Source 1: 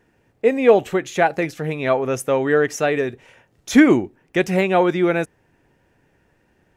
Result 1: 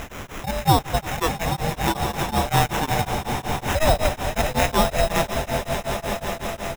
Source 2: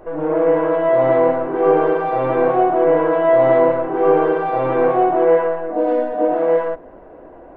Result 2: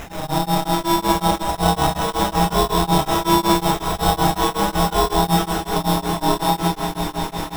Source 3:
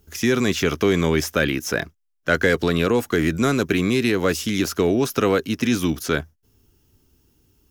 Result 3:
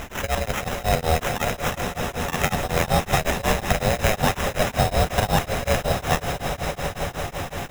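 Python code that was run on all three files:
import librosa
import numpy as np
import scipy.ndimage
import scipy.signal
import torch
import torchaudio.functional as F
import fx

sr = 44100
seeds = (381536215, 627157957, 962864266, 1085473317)

p1 = fx.reverse_delay_fb(x, sr, ms=561, feedback_pct=40, wet_db=-10.0)
p2 = fx.level_steps(p1, sr, step_db=20)
p3 = p1 + F.gain(torch.from_numpy(p2), -1.5).numpy()
p4 = p3 * np.sin(2.0 * np.pi * 320.0 * np.arange(len(p3)) / sr)
p5 = fx.high_shelf(p4, sr, hz=5200.0, db=8.0)
p6 = fx.vibrato(p5, sr, rate_hz=0.36, depth_cents=8.9)
p7 = fx.dmg_noise_colour(p6, sr, seeds[0], colour='pink', level_db=-30.0)
p8 = fx.sample_hold(p7, sr, seeds[1], rate_hz=4500.0, jitter_pct=0)
p9 = p8 + fx.echo_swell(p8, sr, ms=167, loudest=5, wet_db=-14.0, dry=0)
p10 = p9 * np.abs(np.cos(np.pi * 5.4 * np.arange(len(p9)) / sr))
y = F.gain(torch.from_numpy(p10), -2.0).numpy()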